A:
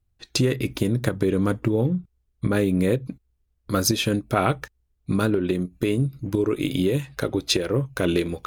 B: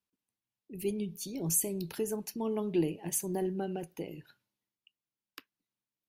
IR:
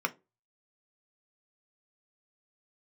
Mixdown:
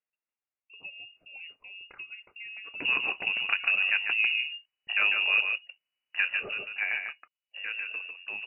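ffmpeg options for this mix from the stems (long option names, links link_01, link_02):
-filter_complex "[0:a]equalizer=frequency=700:width_type=o:width=1.4:gain=8,adelay=2450,volume=-4dB,afade=type=out:start_time=6.1:duration=0.55:silence=0.334965,asplit=2[link_01][link_02];[link_02]volume=-5.5dB[link_03];[1:a]acompressor=threshold=-34dB:ratio=6,volume=-1.5dB[link_04];[link_03]aecho=0:1:147:1[link_05];[link_01][link_04][link_05]amix=inputs=3:normalize=0,highpass=frequency=420:poles=1,lowpass=frequency=2600:width_type=q:width=0.5098,lowpass=frequency=2600:width_type=q:width=0.6013,lowpass=frequency=2600:width_type=q:width=0.9,lowpass=frequency=2600:width_type=q:width=2.563,afreqshift=-3000"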